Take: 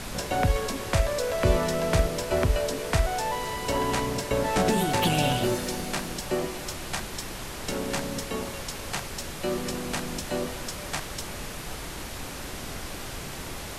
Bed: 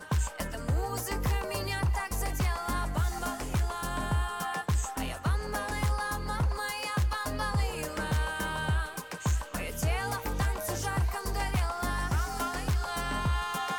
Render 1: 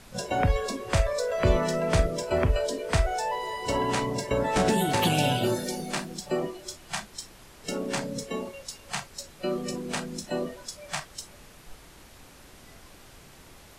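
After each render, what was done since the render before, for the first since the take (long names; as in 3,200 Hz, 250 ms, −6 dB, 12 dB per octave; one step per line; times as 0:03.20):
noise reduction from a noise print 14 dB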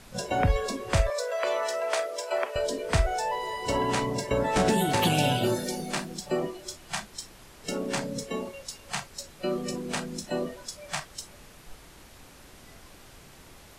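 0:01.10–0:02.56: high-pass filter 520 Hz 24 dB per octave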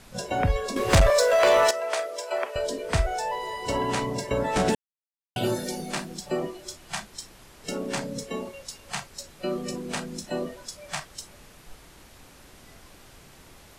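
0:00.76–0:01.71: leveller curve on the samples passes 3
0:04.75–0:05.36: silence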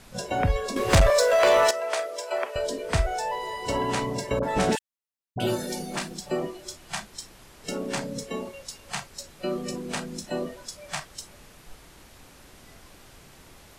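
0:04.39–0:06.13: all-pass dispersion highs, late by 41 ms, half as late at 940 Hz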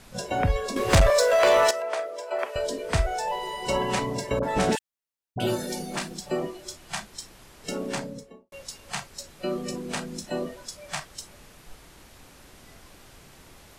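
0:01.82–0:02.39: high-shelf EQ 2,500 Hz −9.5 dB
0:03.27–0:03.99: comb filter 5.4 ms
0:07.86–0:08.52: fade out and dull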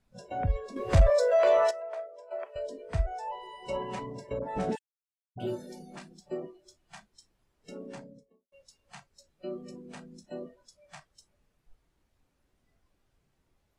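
every bin expanded away from the loudest bin 1.5 to 1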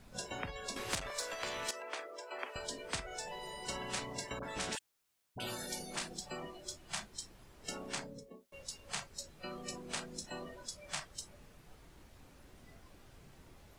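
downward compressor 12 to 1, threshold −27 dBFS, peak gain reduction 14 dB
every bin compressed towards the loudest bin 4 to 1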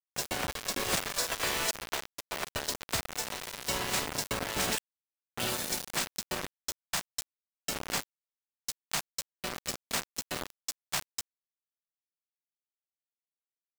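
log-companded quantiser 2 bits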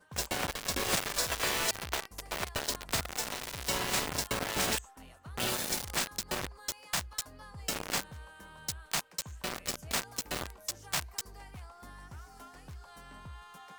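mix in bed −18.5 dB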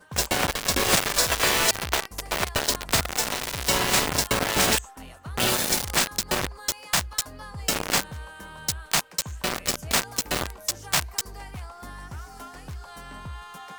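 level +9.5 dB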